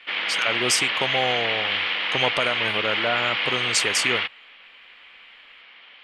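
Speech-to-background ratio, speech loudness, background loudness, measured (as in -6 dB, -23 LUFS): -2.5 dB, -25.5 LUFS, -23.0 LUFS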